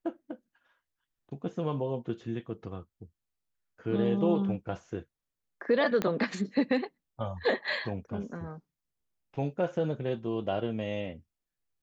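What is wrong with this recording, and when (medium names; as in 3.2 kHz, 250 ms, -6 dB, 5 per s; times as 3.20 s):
6.02 s: pop -15 dBFS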